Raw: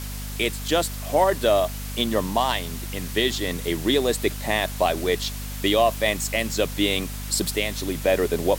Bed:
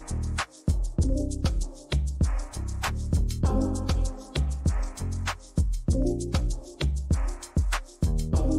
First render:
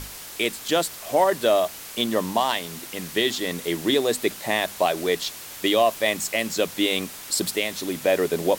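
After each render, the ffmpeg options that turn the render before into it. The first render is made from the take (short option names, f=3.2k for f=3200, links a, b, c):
-af "bandreject=f=50:t=h:w=6,bandreject=f=100:t=h:w=6,bandreject=f=150:t=h:w=6,bandreject=f=200:t=h:w=6,bandreject=f=250:t=h:w=6"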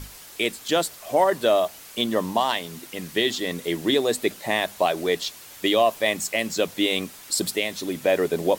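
-af "afftdn=nr=6:nf=-39"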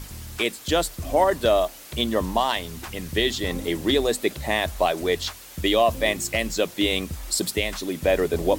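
-filter_complex "[1:a]volume=-9.5dB[a];[0:a][a]amix=inputs=2:normalize=0"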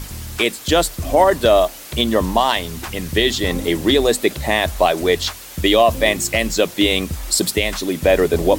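-af "volume=7dB,alimiter=limit=-3dB:level=0:latency=1"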